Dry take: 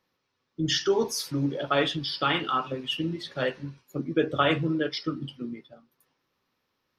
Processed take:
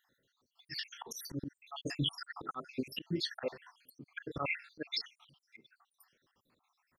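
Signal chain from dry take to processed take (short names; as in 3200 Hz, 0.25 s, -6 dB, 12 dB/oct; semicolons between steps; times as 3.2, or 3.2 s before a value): random spectral dropouts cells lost 75%; high shelf 11000 Hz +5.5 dB; auto swell 0.257 s; gain +4.5 dB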